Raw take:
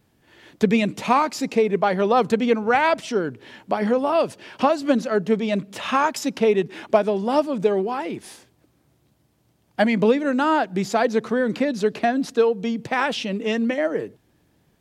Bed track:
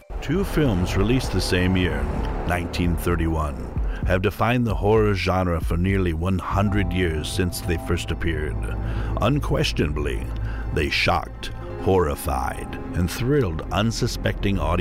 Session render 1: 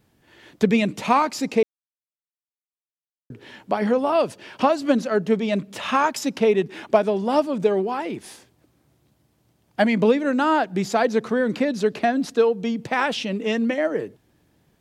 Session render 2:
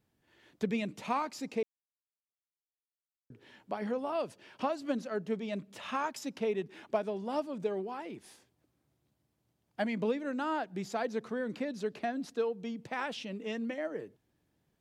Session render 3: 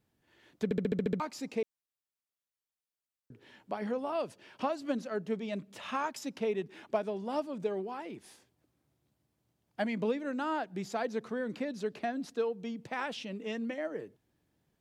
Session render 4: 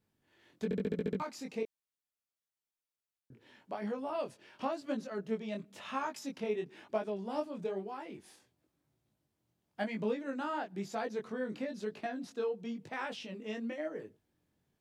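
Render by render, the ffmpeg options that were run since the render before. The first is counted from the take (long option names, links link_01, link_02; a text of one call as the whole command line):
ffmpeg -i in.wav -filter_complex "[0:a]asplit=3[link_01][link_02][link_03];[link_01]atrim=end=1.63,asetpts=PTS-STARTPTS,afade=type=out:start_time=1.626:duration=0.004:curve=hsin[link_04];[link_02]atrim=start=1.63:end=3.3,asetpts=PTS-STARTPTS,volume=0[link_05];[link_03]atrim=start=3.3,asetpts=PTS-STARTPTS,afade=type=in:duration=0.004:curve=hsin[link_06];[link_04][link_05][link_06]concat=n=3:v=0:a=1" out.wav
ffmpeg -i in.wav -af "volume=-14dB" out.wav
ffmpeg -i in.wav -filter_complex "[0:a]asplit=9[link_01][link_02][link_03][link_04][link_05][link_06][link_07][link_08][link_09];[link_01]atrim=end=0.712[link_10];[link_02]atrim=start=0.638:end=0.712[link_11];[link_03]atrim=start=0.638:end=0.712[link_12];[link_04]atrim=start=0.638:end=0.712[link_13];[link_05]atrim=start=0.638:end=0.712[link_14];[link_06]atrim=start=0.638:end=0.712[link_15];[link_07]atrim=start=0.638:end=0.712[link_16];[link_08]atrim=start=0.638:end=0.712[link_17];[link_09]atrim=start=1.198[link_18];[link_10][link_11]acrossfade=duration=0.004:curve1=hsin:curve2=hsin[link_19];[link_19][link_12]acrossfade=duration=0.004:curve1=hsin:curve2=hsin[link_20];[link_20][link_13]acrossfade=duration=0.004:curve1=hsin:curve2=hsin[link_21];[link_21][link_14]acrossfade=duration=0.004:curve1=hsin:curve2=hsin[link_22];[link_22][link_15]acrossfade=duration=0.004:curve1=hsin:curve2=hsin[link_23];[link_23][link_16]acrossfade=duration=0.004:curve1=hsin:curve2=hsin[link_24];[link_24][link_17]acrossfade=duration=0.004:curve1=hsin:curve2=hsin[link_25];[link_25][link_18]acrossfade=duration=0.004:curve1=hsin:curve2=hsin" out.wav
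ffmpeg -i in.wav -af "flanger=delay=18.5:depth=5.2:speed=1" out.wav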